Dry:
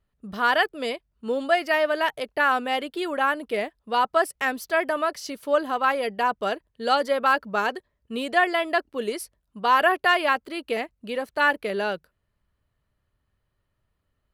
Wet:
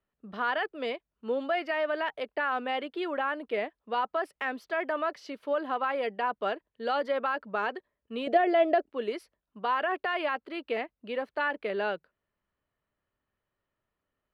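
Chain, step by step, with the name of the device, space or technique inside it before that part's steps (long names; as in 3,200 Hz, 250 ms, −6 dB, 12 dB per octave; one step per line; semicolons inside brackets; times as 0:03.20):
DJ mixer with the lows and highs turned down (three-way crossover with the lows and the highs turned down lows −13 dB, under 200 Hz, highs −22 dB, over 3,800 Hz; brickwall limiter −16 dBFS, peak gain reduction 9.5 dB)
0:08.27–0:08.86: low shelf with overshoot 780 Hz +6 dB, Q 3
level −3.5 dB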